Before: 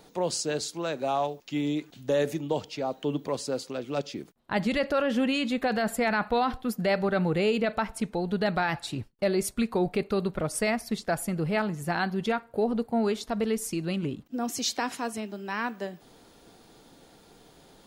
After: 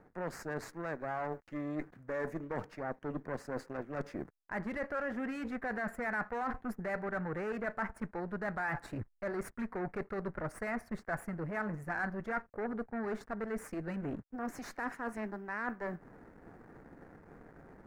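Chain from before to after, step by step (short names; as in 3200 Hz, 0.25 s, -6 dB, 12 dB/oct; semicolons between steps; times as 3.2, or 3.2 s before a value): added harmonics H 5 -29 dB, 6 -16 dB, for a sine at -16 dBFS; backlash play -45.5 dBFS; reverse; compressor 5:1, threshold -38 dBFS, peak gain reduction 15.5 dB; reverse; resonant high shelf 2400 Hz -11 dB, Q 3; gain +1 dB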